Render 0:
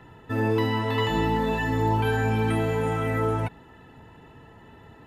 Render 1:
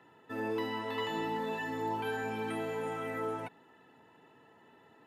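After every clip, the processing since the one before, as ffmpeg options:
-af "highpass=250,volume=-9dB"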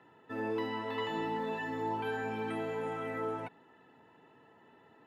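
-af "highshelf=f=6k:g=-11.5"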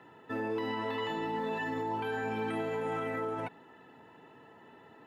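-af "alimiter=level_in=8dB:limit=-24dB:level=0:latency=1,volume=-8dB,volume=5.5dB"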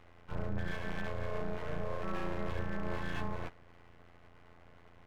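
-af "afftfilt=real='hypot(re,im)*cos(PI*b)':imag='0':win_size=2048:overlap=0.75,highpass=f=200:t=q:w=0.5412,highpass=f=200:t=q:w=1.307,lowpass=f=2.3k:t=q:w=0.5176,lowpass=f=2.3k:t=q:w=0.7071,lowpass=f=2.3k:t=q:w=1.932,afreqshift=-330,aeval=exprs='abs(val(0))':c=same,volume=3dB"

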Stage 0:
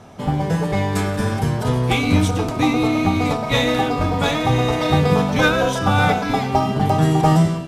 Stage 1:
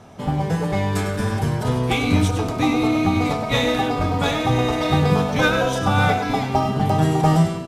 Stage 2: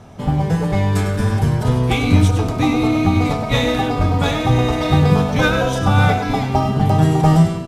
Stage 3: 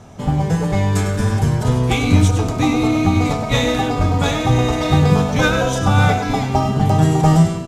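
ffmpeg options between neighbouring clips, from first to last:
-af "aecho=1:1:100:0.299,volume=-2dB"
-af "lowshelf=f=130:g=9,volume=1dB"
-af "equalizer=f=6.9k:t=o:w=0.5:g=7"

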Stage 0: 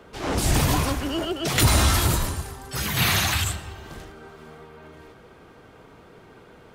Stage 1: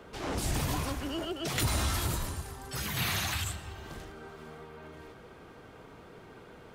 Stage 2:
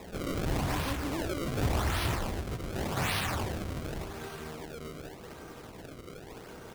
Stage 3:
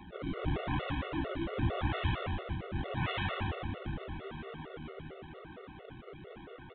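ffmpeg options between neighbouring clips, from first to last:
-af "acompressor=threshold=-41dB:ratio=1.5,volume=-2dB"
-filter_complex "[0:a]aecho=1:1:454|908|1362|1816:0.251|0.098|0.0382|0.0149,asplit=2[a][b];[b]aeval=exprs='(mod(42.2*val(0)+1,2)-1)/42.2':c=same,volume=-3.5dB[c];[a][c]amix=inputs=2:normalize=0,acrusher=samples=29:mix=1:aa=0.000001:lfo=1:lforange=46.4:lforate=0.87"
-af "aecho=1:1:121|242|363|484|605|726|847|968:0.631|0.353|0.198|0.111|0.0621|0.0347|0.0195|0.0109,aresample=8000,aresample=44100,afftfilt=real='re*gt(sin(2*PI*4.4*pts/sr)*(1-2*mod(floor(b*sr/1024/370),2)),0)':imag='im*gt(sin(2*PI*4.4*pts/sr)*(1-2*mod(floor(b*sr/1024/370),2)),0)':win_size=1024:overlap=0.75,volume=-1.5dB"

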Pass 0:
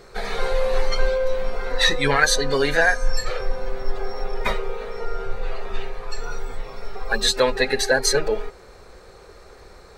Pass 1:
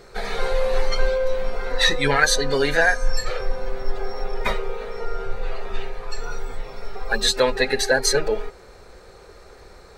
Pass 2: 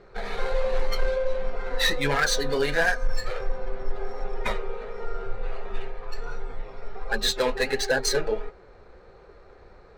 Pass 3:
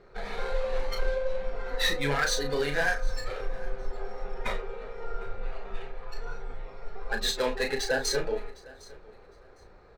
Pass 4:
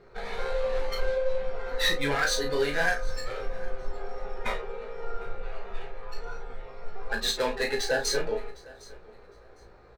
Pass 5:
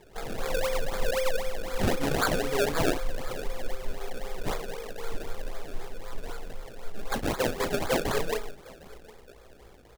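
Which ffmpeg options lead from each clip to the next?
-af "bandreject=f=1.1k:w=24"
-af "adynamicsmooth=sensitivity=4.5:basefreq=2.6k,asoftclip=type=hard:threshold=-11.5dB,flanger=delay=4.8:depth=7.3:regen=-61:speed=1.4:shape=triangular"
-filter_complex "[0:a]asplit=2[a][b];[b]adelay=35,volume=-6.5dB[c];[a][c]amix=inputs=2:normalize=0,aecho=1:1:757|1514:0.0794|0.0159,volume=-4.5dB"
-filter_complex "[0:a]asplit=2[a][b];[b]adelay=17,volume=-5.5dB[c];[a][c]amix=inputs=2:normalize=0"
-af "acrusher=samples=30:mix=1:aa=0.000001:lfo=1:lforange=30:lforate=3.9"

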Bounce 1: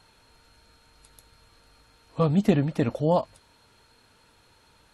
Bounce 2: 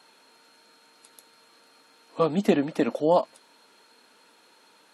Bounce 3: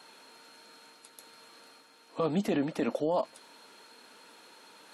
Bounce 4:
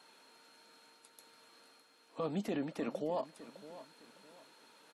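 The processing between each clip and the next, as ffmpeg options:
-af "highpass=f=230:w=0.5412,highpass=f=230:w=1.3066,volume=2.5dB"
-af "alimiter=limit=-18.5dB:level=0:latency=1:release=15,areverse,acompressor=mode=upward:threshold=-46dB:ratio=2.5,areverse,volume=-1.5dB"
-af "aecho=1:1:608|1216|1824:0.168|0.0554|0.0183,volume=-7.5dB"

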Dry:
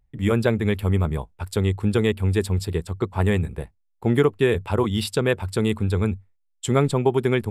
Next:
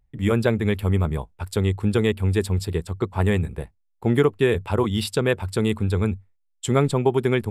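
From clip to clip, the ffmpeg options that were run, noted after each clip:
-af anull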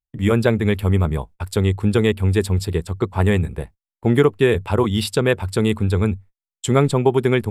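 -af "agate=range=-30dB:threshold=-42dB:ratio=16:detection=peak,volume=3.5dB"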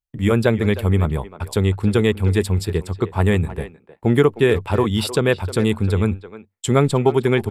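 -filter_complex "[0:a]asplit=2[a][b];[b]adelay=310,highpass=300,lowpass=3.4k,asoftclip=type=hard:threshold=-10.5dB,volume=-13dB[c];[a][c]amix=inputs=2:normalize=0"

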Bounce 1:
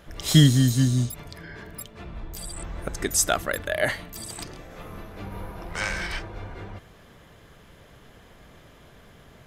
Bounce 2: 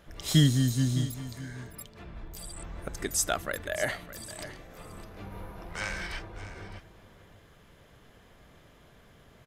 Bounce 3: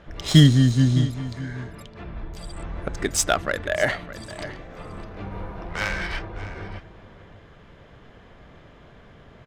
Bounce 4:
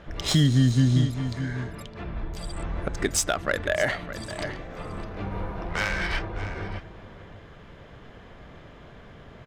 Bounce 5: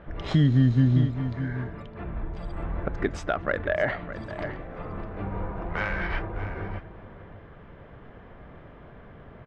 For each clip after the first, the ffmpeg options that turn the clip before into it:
-af "aecho=1:1:610:0.188,volume=-6dB"
-af "adynamicsmooth=sensitivity=4:basefreq=3.9k,volume=8.5dB"
-af "alimiter=limit=-13.5dB:level=0:latency=1:release=258,volume=2dB"
-af "lowpass=1.9k"

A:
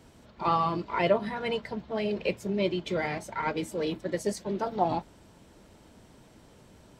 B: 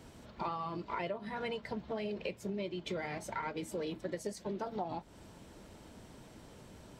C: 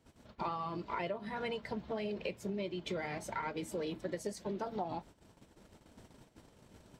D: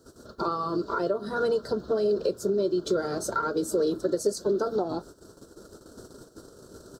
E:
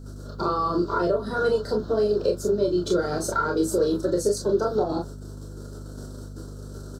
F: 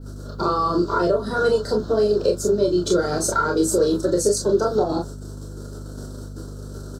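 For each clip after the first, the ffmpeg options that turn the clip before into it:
-af "acompressor=threshold=-36dB:ratio=10,volume=1dB"
-af "agate=range=-16dB:threshold=-52dB:ratio=16:detection=peak"
-filter_complex "[0:a]firequalizer=gain_entry='entry(200,0);entry(390,12);entry(860,-5);entry(1400,11);entry(2100,-24);entry(4200,8)':delay=0.05:min_phase=1,asplit=2[a][b];[b]alimiter=level_in=2.5dB:limit=-24dB:level=0:latency=1:release=281,volume=-2.5dB,volume=-2.5dB[c];[a][c]amix=inputs=2:normalize=0,volume=2dB"
-af "aeval=exprs='val(0)+0.00891*(sin(2*PI*50*n/s)+sin(2*PI*2*50*n/s)/2+sin(2*PI*3*50*n/s)/3+sin(2*PI*4*50*n/s)/4+sin(2*PI*5*50*n/s)/5)':c=same,aecho=1:1:28|40:0.596|0.501,volume=1.5dB"
-af "adynamicequalizer=threshold=0.00355:dfrequency=7500:dqfactor=1.1:tfrequency=7500:tqfactor=1.1:attack=5:release=100:ratio=0.375:range=3:mode=boostabove:tftype=bell,volume=3.5dB"

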